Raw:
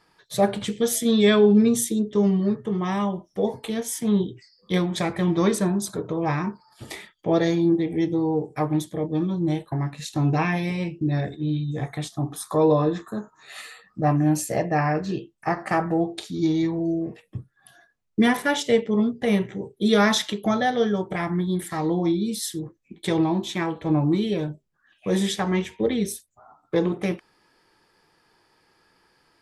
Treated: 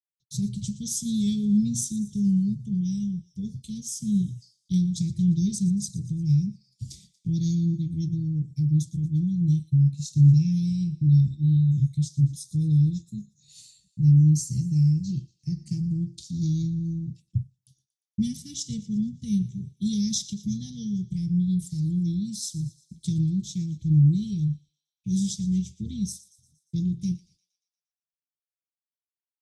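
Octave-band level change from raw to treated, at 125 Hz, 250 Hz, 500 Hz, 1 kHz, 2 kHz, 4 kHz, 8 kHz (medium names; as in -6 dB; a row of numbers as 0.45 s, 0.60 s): +6.0 dB, -2.5 dB, under -25 dB, under -40 dB, under -35 dB, -8.5 dB, -1.5 dB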